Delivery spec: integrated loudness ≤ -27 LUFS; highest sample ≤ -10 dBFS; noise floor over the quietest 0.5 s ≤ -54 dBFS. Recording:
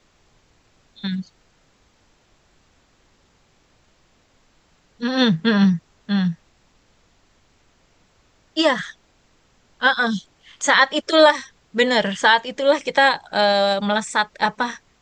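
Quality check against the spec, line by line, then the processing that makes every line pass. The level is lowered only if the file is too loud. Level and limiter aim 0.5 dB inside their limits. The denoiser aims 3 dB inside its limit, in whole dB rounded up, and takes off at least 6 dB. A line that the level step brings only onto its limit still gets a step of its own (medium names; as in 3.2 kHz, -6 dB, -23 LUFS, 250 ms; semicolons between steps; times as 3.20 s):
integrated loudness -19.0 LUFS: fail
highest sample -2.5 dBFS: fail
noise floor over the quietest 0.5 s -60 dBFS: pass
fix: trim -8.5 dB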